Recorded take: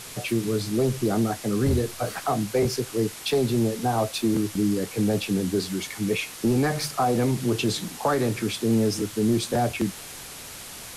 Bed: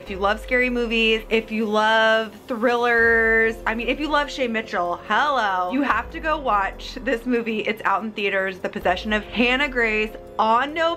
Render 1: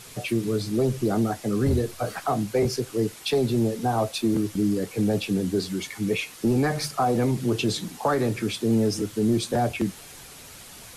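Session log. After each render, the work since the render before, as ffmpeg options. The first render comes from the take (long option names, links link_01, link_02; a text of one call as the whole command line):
ffmpeg -i in.wav -af "afftdn=noise_reduction=6:noise_floor=-40" out.wav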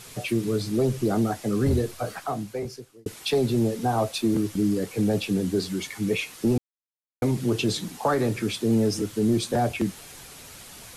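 ffmpeg -i in.wav -filter_complex "[0:a]asplit=4[link_01][link_02][link_03][link_04];[link_01]atrim=end=3.06,asetpts=PTS-STARTPTS,afade=type=out:start_time=1.81:duration=1.25[link_05];[link_02]atrim=start=3.06:end=6.58,asetpts=PTS-STARTPTS,afade=type=in:duration=0.004:curve=hsin,afade=type=out:start_time=3.516:duration=0.004:curve=hsin[link_06];[link_03]atrim=start=6.58:end=7.22,asetpts=PTS-STARTPTS,volume=0[link_07];[link_04]atrim=start=7.22,asetpts=PTS-STARTPTS,afade=type=in:duration=0.004:curve=hsin[link_08];[link_05][link_06][link_07][link_08]concat=n=4:v=0:a=1" out.wav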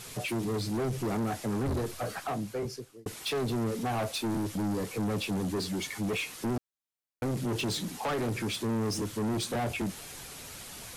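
ffmpeg -i in.wav -af "asoftclip=type=tanh:threshold=-28dB" out.wav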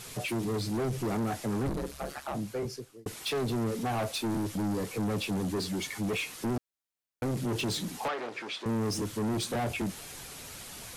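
ffmpeg -i in.wav -filter_complex "[0:a]asettb=1/sr,asplit=3[link_01][link_02][link_03];[link_01]atrim=end=1.694[link_04];[link_02]atrim=start=1.69:end=2.35,asetpts=PTS-STARTPTS,afade=type=in:duration=0.004:curve=qsin,afade=type=out:start_time=0.656:duration=0.004:curve=qsin,aeval=exprs='val(0)*sin(2*PI*69*n/s)':channel_layout=same[link_05];[link_03]atrim=start=2.346[link_06];[link_04][link_05]acrossfade=duration=0.004:curve1=hsin:curve2=qsin[link_07];[link_07][link_06]acrossfade=duration=0.004:curve1=qsin:curve2=hsin,asettb=1/sr,asplit=3[link_08][link_09][link_10];[link_08]atrim=end=8.084[link_11];[link_09]atrim=start=8.08:end=8.66,asetpts=PTS-STARTPTS,afade=type=in:duration=0.004:curve=qsin,afade=type=out:start_time=0.576:duration=0.004:curve=qsin,highpass=520,lowpass=4100[link_12];[link_10]atrim=start=8.656[link_13];[link_11][link_12]acrossfade=duration=0.004:curve1=hsin:curve2=qsin[link_14];[link_14][link_13]acrossfade=duration=0.004:curve1=qsin:curve2=hsin" out.wav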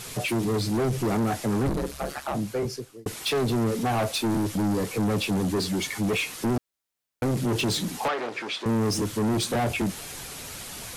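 ffmpeg -i in.wav -af "volume=6dB" out.wav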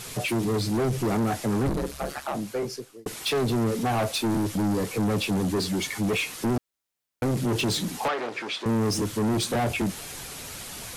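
ffmpeg -i in.wav -filter_complex "[0:a]asettb=1/sr,asplit=3[link_01][link_02][link_03];[link_01]atrim=end=2.264[link_04];[link_02]atrim=start=2.26:end=3.11,asetpts=PTS-STARTPTS,afade=type=in:duration=0.004:curve=qsin,afade=type=out:start_time=0.846:duration=0.004:curve=qsin,equalizer=frequency=70:width=0.77:gain=-12.5[link_05];[link_03]atrim=start=3.106[link_06];[link_04][link_05]acrossfade=duration=0.004:curve1=hsin:curve2=qsin[link_07];[link_07][link_06]acrossfade=duration=0.004:curve1=qsin:curve2=hsin" out.wav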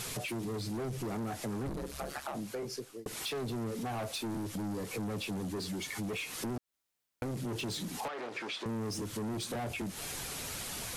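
ffmpeg -i in.wav -af "alimiter=level_in=2.5dB:limit=-24dB:level=0:latency=1:release=157,volume=-2.5dB,acompressor=threshold=-36dB:ratio=6" out.wav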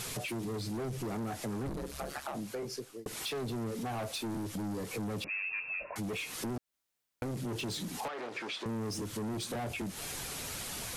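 ffmpeg -i in.wav -filter_complex "[0:a]asettb=1/sr,asplit=3[link_01][link_02][link_03];[link_01]atrim=end=5.244[link_04];[link_02]atrim=start=5.24:end=5.96,asetpts=PTS-STARTPTS,afade=type=in:duration=0.004:curve=qsin,afade=type=out:start_time=0.716:duration=0.004:curve=qsin,lowpass=frequency=2400:width_type=q:width=0.5098,lowpass=frequency=2400:width_type=q:width=0.6013,lowpass=frequency=2400:width_type=q:width=0.9,lowpass=frequency=2400:width_type=q:width=2.563,afreqshift=-2800[link_05];[link_03]atrim=start=5.956[link_06];[link_04][link_05]acrossfade=duration=0.004:curve1=hsin:curve2=qsin[link_07];[link_07][link_06]acrossfade=duration=0.004:curve1=qsin:curve2=hsin" out.wav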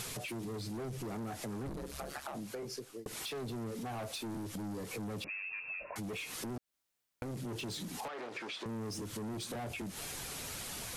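ffmpeg -i in.wav -af "acompressor=threshold=-39dB:ratio=6" out.wav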